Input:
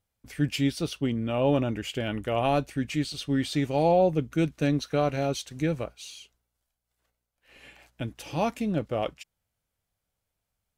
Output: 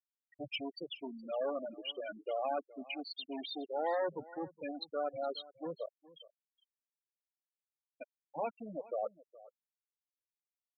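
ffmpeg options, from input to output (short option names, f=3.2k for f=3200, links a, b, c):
-filter_complex "[0:a]equalizer=f=940:w=0.34:g=-3.5,asoftclip=type=tanh:threshold=-29.5dB,acrossover=split=400 5300:gain=0.126 1 0.0891[a][b][c];[a][b][c]amix=inputs=3:normalize=0,afftfilt=real='re*gte(hypot(re,im),0.0316)':imag='im*gte(hypot(re,im),0.0316)':win_size=1024:overlap=0.75,aecho=1:1:418:0.1,volume=2dB"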